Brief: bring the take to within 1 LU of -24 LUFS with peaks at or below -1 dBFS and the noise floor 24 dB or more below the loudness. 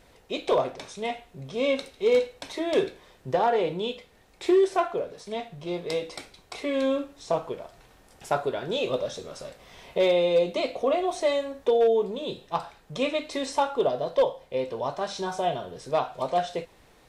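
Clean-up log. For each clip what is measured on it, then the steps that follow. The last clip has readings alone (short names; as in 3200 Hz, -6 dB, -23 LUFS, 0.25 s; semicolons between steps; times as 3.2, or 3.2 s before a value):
clipped 0.2%; flat tops at -14.5 dBFS; loudness -27.0 LUFS; peak -14.5 dBFS; loudness target -24.0 LUFS
-> clip repair -14.5 dBFS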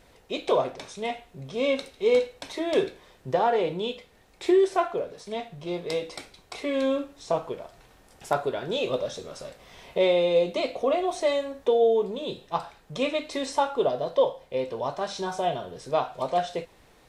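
clipped 0.0%; loudness -27.0 LUFS; peak -9.0 dBFS; loudness target -24.0 LUFS
-> gain +3 dB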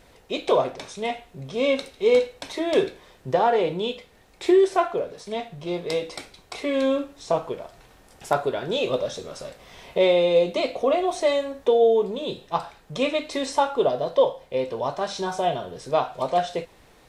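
loudness -24.0 LUFS; peak -6.0 dBFS; noise floor -55 dBFS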